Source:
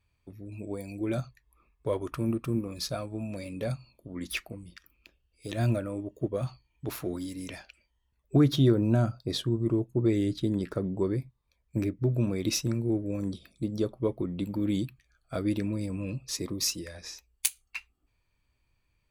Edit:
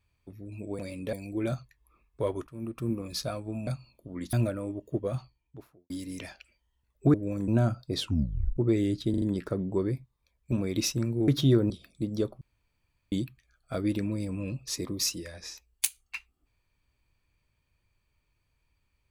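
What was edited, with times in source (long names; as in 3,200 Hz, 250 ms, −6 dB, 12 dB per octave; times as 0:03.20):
0:02.13–0:02.62: fade in, from −22 dB
0:03.33–0:03.67: move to 0:00.79
0:04.33–0:05.62: remove
0:06.28–0:07.19: fade out and dull
0:08.43–0:08.85: swap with 0:12.97–0:13.31
0:09.36: tape stop 0.58 s
0:10.47: stutter 0.04 s, 4 plays
0:11.77–0:12.21: remove
0:14.02–0:14.73: fill with room tone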